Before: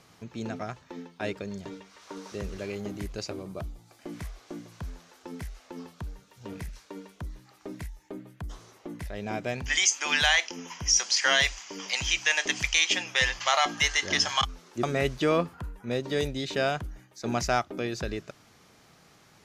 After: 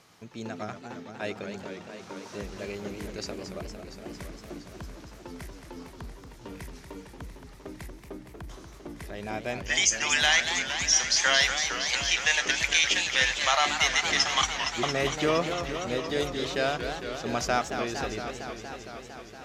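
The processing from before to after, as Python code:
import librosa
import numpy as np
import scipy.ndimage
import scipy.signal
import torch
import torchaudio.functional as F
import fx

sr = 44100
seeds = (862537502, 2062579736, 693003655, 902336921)

y = fx.low_shelf(x, sr, hz=280.0, db=-5.5)
y = fx.echo_warbled(y, sr, ms=230, feedback_pct=79, rate_hz=2.8, cents=209, wet_db=-8)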